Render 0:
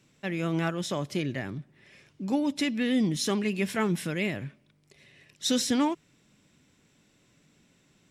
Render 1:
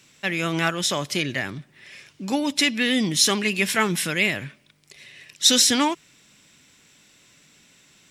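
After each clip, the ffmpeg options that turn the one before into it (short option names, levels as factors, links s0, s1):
-af "tiltshelf=f=970:g=-6.5,volume=2.37"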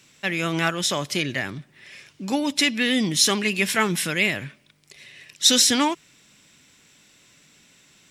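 -af anull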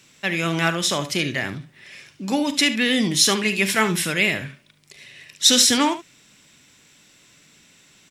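-af "aecho=1:1:41|72:0.178|0.237,volume=1.19"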